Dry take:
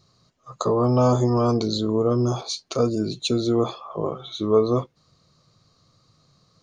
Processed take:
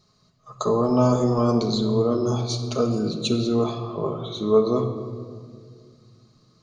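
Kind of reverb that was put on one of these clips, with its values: shoebox room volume 3800 m³, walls mixed, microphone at 1.4 m; gain -2 dB

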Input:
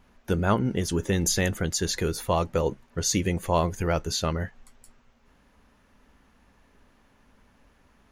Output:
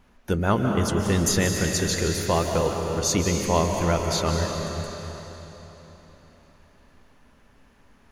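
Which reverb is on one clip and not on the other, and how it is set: digital reverb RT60 3.9 s, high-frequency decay 0.95×, pre-delay 0.11 s, DRR 2 dB; gain +1 dB

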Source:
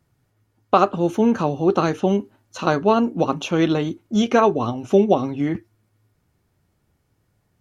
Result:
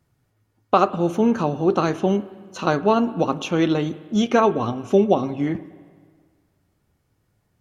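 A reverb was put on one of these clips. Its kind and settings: spring tank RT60 1.7 s, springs 53/59 ms, chirp 60 ms, DRR 16 dB; gain -1 dB

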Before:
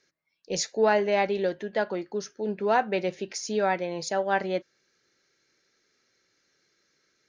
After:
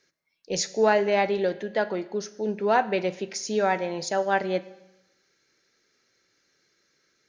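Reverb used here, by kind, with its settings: Schroeder reverb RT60 0.95 s, combs from 33 ms, DRR 16 dB; gain +1.5 dB

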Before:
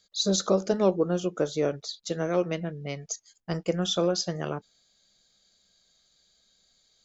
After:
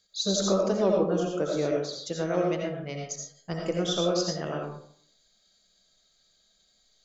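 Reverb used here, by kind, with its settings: digital reverb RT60 0.62 s, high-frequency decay 0.5×, pre-delay 45 ms, DRR -0.5 dB; gain -3 dB

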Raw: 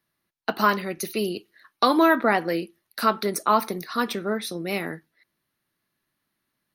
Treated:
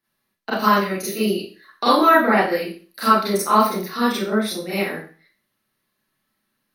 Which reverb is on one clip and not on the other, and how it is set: Schroeder reverb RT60 0.39 s, combs from 29 ms, DRR -9.5 dB; gain -5.5 dB

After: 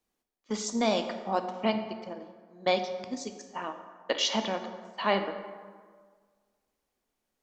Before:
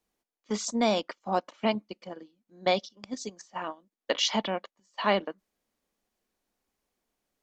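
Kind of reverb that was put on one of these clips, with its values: plate-style reverb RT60 1.7 s, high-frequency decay 0.55×, DRR 6.5 dB; gain -1.5 dB

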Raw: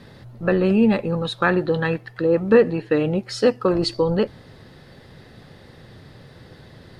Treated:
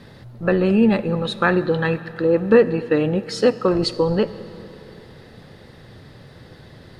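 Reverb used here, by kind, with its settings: digital reverb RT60 3.6 s, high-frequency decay 0.75×, pre-delay 15 ms, DRR 15 dB; gain +1 dB

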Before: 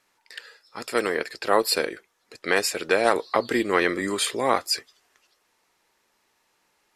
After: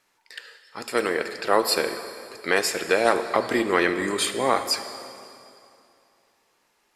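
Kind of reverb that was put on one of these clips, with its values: plate-style reverb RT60 2.7 s, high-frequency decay 0.85×, DRR 8.5 dB

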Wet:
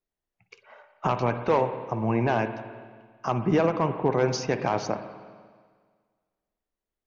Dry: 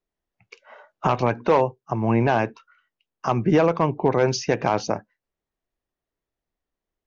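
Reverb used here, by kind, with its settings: spring tank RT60 1.7 s, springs 50/55 ms, chirp 40 ms, DRR 8.5 dB; gain -4.5 dB

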